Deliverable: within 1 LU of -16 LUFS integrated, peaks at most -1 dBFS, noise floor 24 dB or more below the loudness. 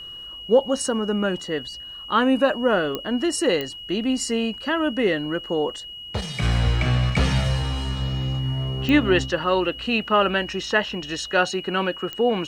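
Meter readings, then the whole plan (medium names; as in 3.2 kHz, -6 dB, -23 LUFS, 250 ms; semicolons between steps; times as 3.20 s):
clicks found 4; steady tone 2.9 kHz; tone level -35 dBFS; loudness -23.0 LUFS; peak level -5.5 dBFS; loudness target -16.0 LUFS
-> de-click; band-stop 2.9 kHz, Q 30; trim +7 dB; peak limiter -1 dBFS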